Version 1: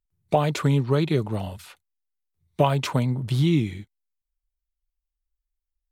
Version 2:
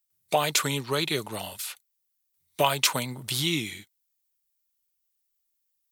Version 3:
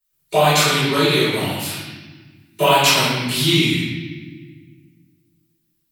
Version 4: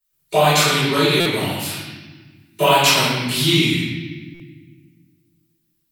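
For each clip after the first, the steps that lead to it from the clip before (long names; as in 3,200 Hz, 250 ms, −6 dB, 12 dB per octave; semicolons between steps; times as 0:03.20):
spectral tilt +4.5 dB per octave
convolution reverb RT60 1.4 s, pre-delay 3 ms, DRR −14.5 dB; level −9.5 dB
buffer that repeats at 0:01.20/0:04.34, samples 256, times 9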